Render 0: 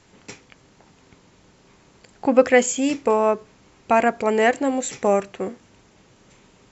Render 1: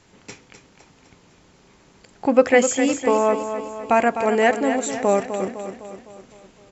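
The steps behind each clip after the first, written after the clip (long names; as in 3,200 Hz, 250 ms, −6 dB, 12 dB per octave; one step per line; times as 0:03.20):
repeating echo 254 ms, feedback 53%, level −9 dB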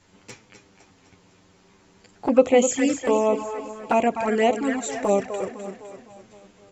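flanger swept by the level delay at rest 11.1 ms, full sweep at −13.5 dBFS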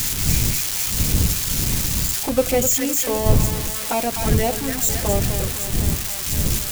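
spike at every zero crossing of −10 dBFS
wind on the microphone 120 Hz −20 dBFS
level −3 dB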